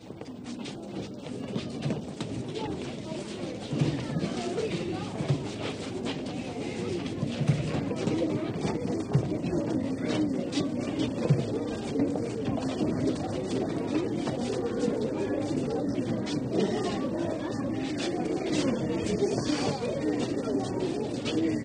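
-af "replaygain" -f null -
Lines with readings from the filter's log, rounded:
track_gain = +11.4 dB
track_peak = 0.200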